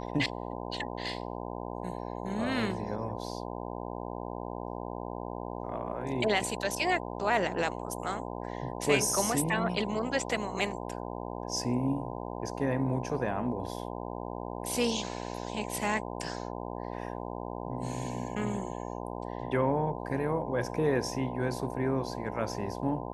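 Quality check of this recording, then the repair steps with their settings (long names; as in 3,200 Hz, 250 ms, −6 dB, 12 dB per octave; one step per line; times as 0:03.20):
mains buzz 60 Hz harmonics 17 −38 dBFS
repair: hum removal 60 Hz, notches 17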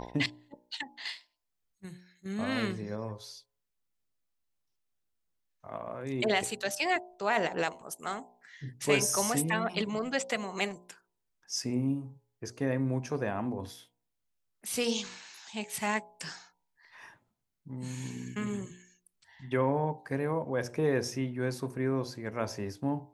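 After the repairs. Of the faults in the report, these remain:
none of them is left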